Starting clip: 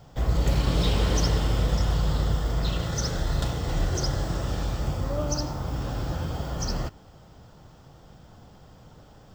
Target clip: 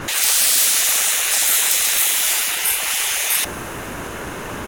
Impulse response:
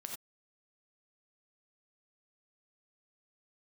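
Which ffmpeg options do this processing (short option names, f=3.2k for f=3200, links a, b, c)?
-filter_complex "[0:a]apsyclip=29.5dB,afftfilt=real='re*lt(hypot(re,im),0.708)':imag='im*lt(hypot(re,im),0.708)':win_size=1024:overlap=0.75,asplit=2[a][b];[b]adelay=70,lowpass=f=1.1k:p=1,volume=-20dB,asplit=2[c][d];[d]adelay=70,lowpass=f=1.1k:p=1,volume=0.27[e];[c][e]amix=inputs=2:normalize=0[f];[a][f]amix=inputs=2:normalize=0,asetrate=88200,aresample=44100,adynamicequalizer=threshold=0.0447:dfrequency=7000:dqfactor=0.7:tfrequency=7000:tqfactor=0.7:attack=5:release=100:ratio=0.375:range=2.5:mode=boostabove:tftype=highshelf,volume=-5.5dB"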